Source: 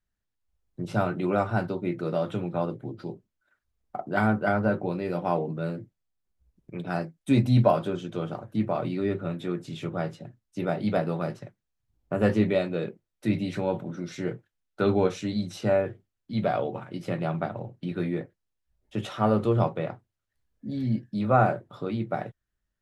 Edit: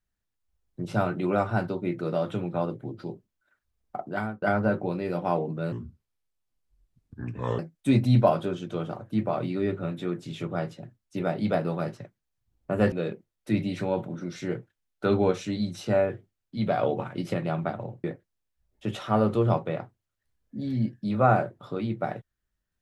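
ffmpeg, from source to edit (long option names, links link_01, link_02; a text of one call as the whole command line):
ffmpeg -i in.wav -filter_complex "[0:a]asplit=8[link_01][link_02][link_03][link_04][link_05][link_06][link_07][link_08];[link_01]atrim=end=4.42,asetpts=PTS-STARTPTS,afade=type=out:start_time=3.98:duration=0.44[link_09];[link_02]atrim=start=4.42:end=5.724,asetpts=PTS-STARTPTS,afade=type=in:duration=0.004:curve=hsin[link_10];[link_03]atrim=start=5.72:end=7.01,asetpts=PTS-STARTPTS,asetrate=30429,aresample=44100[link_11];[link_04]atrim=start=7.006:end=12.342[link_12];[link_05]atrim=start=12.678:end=16.592[link_13];[link_06]atrim=start=16.588:end=17.102,asetpts=PTS-STARTPTS,volume=4dB[link_14];[link_07]atrim=start=17.098:end=17.802[link_15];[link_08]atrim=start=18.138[link_16];[link_09][link_10]concat=n=2:v=0:a=1[link_17];[link_17][link_11]acrossfade=duration=0.004:curve1=hsin:curve2=hsin[link_18];[link_18][link_12]acrossfade=duration=0.004:curve1=hsin:curve2=hsin[link_19];[link_19][link_13]acrossfade=duration=0.004:curve1=hsin:curve2=hsin[link_20];[link_20][link_14]acrossfade=duration=0.004:curve1=hsin:curve2=hsin[link_21];[link_21][link_15]acrossfade=duration=0.004:curve1=hsin:curve2=hsin[link_22];[link_22][link_16]acrossfade=duration=0.004:curve1=hsin:curve2=hsin" out.wav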